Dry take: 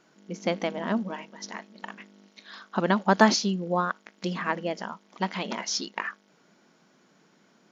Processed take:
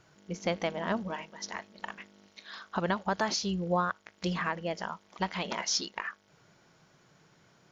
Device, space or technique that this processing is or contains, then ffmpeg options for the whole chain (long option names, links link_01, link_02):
car stereo with a boomy subwoofer: -af "lowshelf=frequency=150:width_type=q:width=3:gain=13.5,alimiter=limit=-17.5dB:level=0:latency=1:release=363"